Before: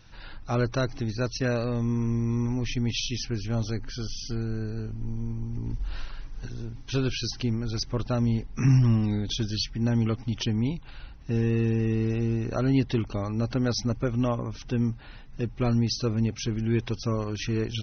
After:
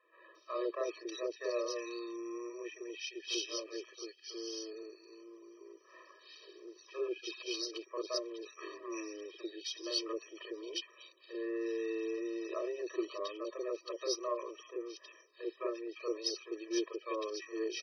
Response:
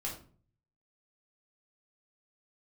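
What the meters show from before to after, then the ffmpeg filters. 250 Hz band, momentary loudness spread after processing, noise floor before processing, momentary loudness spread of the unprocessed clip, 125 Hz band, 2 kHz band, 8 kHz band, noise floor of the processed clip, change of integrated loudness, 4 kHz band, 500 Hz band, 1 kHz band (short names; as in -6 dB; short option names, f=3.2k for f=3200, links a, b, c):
-15.5 dB, 17 LU, -44 dBFS, 10 LU, under -40 dB, -9.5 dB, n/a, -63 dBFS, -12.0 dB, -6.5 dB, -5.0 dB, -7.5 dB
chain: -filter_complex "[0:a]acrossover=split=560|2100[a][b][c];[a]adelay=40[d];[c]adelay=350[e];[d][b][e]amix=inputs=3:normalize=0,aeval=exprs='0.266*(cos(1*acos(clip(val(0)/0.266,-1,1)))-cos(1*PI/2))+0.0266*(cos(2*acos(clip(val(0)/0.266,-1,1)))-cos(2*PI/2))':c=same,afftfilt=real='re*eq(mod(floor(b*sr/1024/330),2),1)':imag='im*eq(mod(floor(b*sr/1024/330),2),1)':win_size=1024:overlap=0.75,volume=-2.5dB"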